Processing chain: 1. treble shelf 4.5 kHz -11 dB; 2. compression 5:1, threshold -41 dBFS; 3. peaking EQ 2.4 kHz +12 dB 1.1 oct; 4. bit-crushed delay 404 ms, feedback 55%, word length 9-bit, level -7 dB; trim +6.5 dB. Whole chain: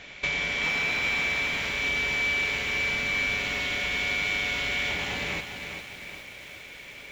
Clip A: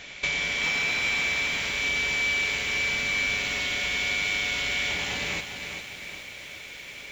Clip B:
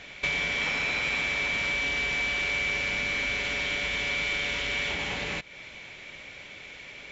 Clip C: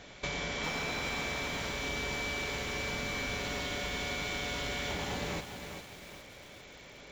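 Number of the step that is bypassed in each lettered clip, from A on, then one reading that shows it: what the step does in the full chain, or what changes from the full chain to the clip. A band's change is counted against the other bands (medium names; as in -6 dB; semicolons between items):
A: 1, 8 kHz band +7.0 dB; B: 4, loudness change -1.0 LU; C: 3, 2 kHz band -10.0 dB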